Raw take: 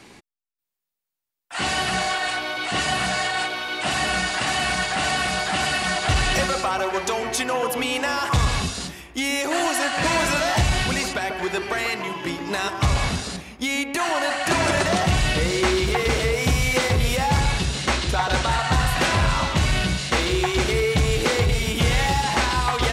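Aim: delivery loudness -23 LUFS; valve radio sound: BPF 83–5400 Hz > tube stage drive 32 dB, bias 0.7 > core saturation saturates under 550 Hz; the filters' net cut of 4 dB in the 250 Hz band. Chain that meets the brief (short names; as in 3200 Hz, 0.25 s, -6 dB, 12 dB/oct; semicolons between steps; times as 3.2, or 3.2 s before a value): BPF 83–5400 Hz; bell 250 Hz -6 dB; tube stage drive 32 dB, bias 0.7; core saturation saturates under 550 Hz; gain +13.5 dB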